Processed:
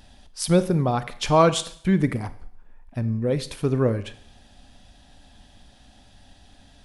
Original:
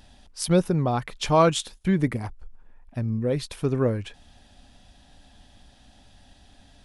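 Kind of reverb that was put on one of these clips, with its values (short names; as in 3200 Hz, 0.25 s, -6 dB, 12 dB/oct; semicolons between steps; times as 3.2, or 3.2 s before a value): Schroeder reverb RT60 0.61 s, combs from 31 ms, DRR 13.5 dB; gain +1.5 dB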